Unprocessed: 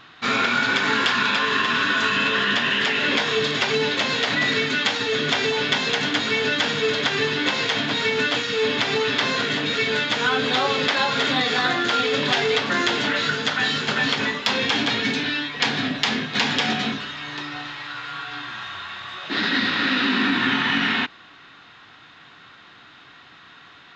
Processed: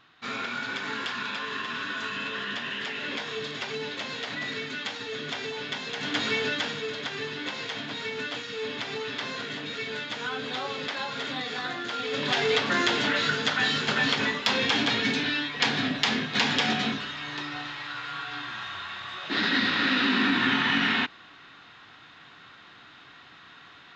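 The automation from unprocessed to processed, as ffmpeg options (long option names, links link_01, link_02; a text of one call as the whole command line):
ffmpeg -i in.wav -af "volume=4.5dB,afade=type=in:start_time=5.95:duration=0.29:silence=0.398107,afade=type=out:start_time=6.24:duration=0.62:silence=0.421697,afade=type=in:start_time=11.98:duration=0.54:silence=0.375837" out.wav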